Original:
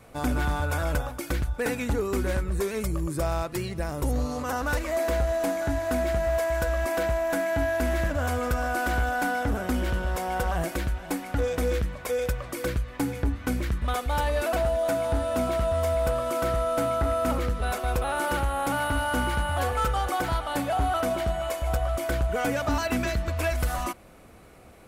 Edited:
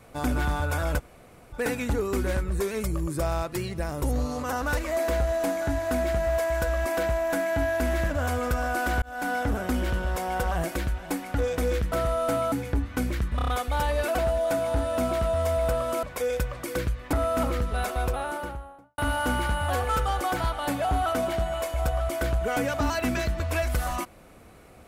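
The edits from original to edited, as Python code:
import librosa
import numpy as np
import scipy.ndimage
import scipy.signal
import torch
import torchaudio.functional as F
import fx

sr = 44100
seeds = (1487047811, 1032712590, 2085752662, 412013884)

y = fx.studio_fade_out(x, sr, start_s=17.78, length_s=1.08)
y = fx.edit(y, sr, fx.room_tone_fill(start_s=0.99, length_s=0.54, crossfade_s=0.02),
    fx.fade_in_span(start_s=9.02, length_s=0.32),
    fx.swap(start_s=11.92, length_s=1.1, other_s=16.41, other_length_s=0.6),
    fx.stutter(start_s=13.86, slice_s=0.03, count=5), tone=tone)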